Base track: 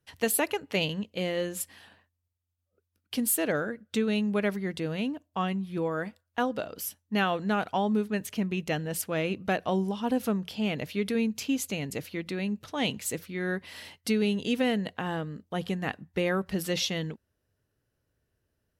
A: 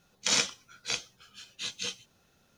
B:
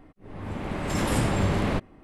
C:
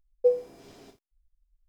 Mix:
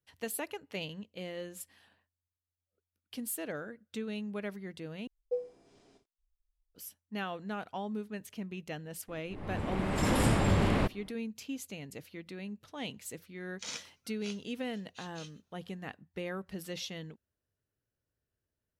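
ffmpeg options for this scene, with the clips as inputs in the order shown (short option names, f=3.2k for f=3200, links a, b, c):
-filter_complex "[0:a]volume=-11dB[a];[3:a]aresample=22050,aresample=44100[b];[2:a]bandreject=f=6.2k:w=22[c];[a]asplit=2[d][e];[d]atrim=end=5.074[f];[b]atrim=end=1.68,asetpts=PTS-STARTPTS,volume=-12dB[g];[e]atrim=start=6.746[h];[c]atrim=end=2.03,asetpts=PTS-STARTPTS,volume=-2.5dB,afade=t=in:d=0.004:c=hsin,afade=t=out:st=2.026:d=0.004:c=hsin,adelay=9080[i];[1:a]atrim=end=2.57,asetpts=PTS-STARTPTS,volume=-15.5dB,afade=t=in:d=0.004:c=hsin,afade=t=out:st=2.566:d=0.004:c=hsin,adelay=13360[j];[f][g]acrossfade=d=0.004:c1=hsin:c2=hsin[k];[k][h]acrossfade=d=0.004:c1=hsin:c2=hsin[l];[l][i][j]amix=inputs=3:normalize=0"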